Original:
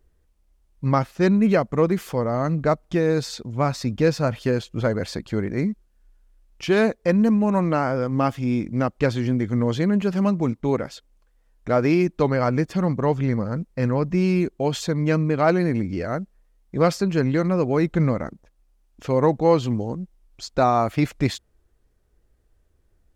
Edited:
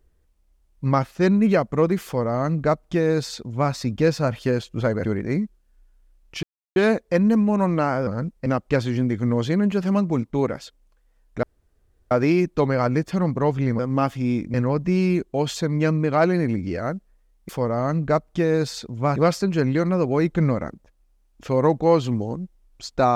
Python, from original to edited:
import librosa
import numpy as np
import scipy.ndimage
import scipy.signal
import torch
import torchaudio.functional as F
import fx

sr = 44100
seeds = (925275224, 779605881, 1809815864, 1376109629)

y = fx.edit(x, sr, fx.duplicate(start_s=2.05, length_s=1.67, to_s=16.75),
    fx.cut(start_s=5.05, length_s=0.27),
    fx.insert_silence(at_s=6.7, length_s=0.33),
    fx.swap(start_s=8.01, length_s=0.75, other_s=13.41, other_length_s=0.39),
    fx.insert_room_tone(at_s=11.73, length_s=0.68), tone=tone)